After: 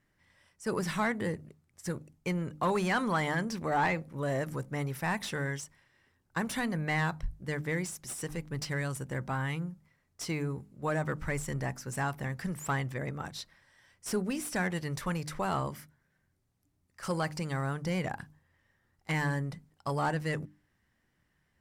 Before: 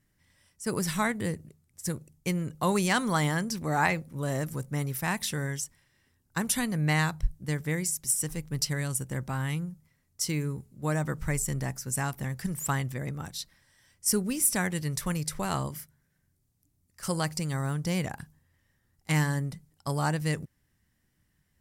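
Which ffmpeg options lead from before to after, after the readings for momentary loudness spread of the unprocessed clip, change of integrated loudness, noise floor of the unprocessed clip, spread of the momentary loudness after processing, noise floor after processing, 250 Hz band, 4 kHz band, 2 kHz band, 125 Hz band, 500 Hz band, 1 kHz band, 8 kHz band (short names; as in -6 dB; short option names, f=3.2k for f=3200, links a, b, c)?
11 LU, -3.5 dB, -73 dBFS, 10 LU, -75 dBFS, -3.5 dB, -6.0 dB, -1.5 dB, -4.5 dB, 0.0 dB, -0.5 dB, -12.0 dB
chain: -filter_complex "[0:a]bandreject=f=50:t=h:w=6,bandreject=f=100:t=h:w=6,bandreject=f=150:t=h:w=6,bandreject=f=200:t=h:w=6,bandreject=f=250:t=h:w=6,bandreject=f=300:t=h:w=6,asoftclip=type=tanh:threshold=-21.5dB,asplit=2[a][b];[b]highpass=f=720:p=1,volume=9dB,asoftclip=type=tanh:threshold=-21.5dB[c];[a][c]amix=inputs=2:normalize=0,lowpass=f=1.4k:p=1,volume=-6dB,volume=2dB"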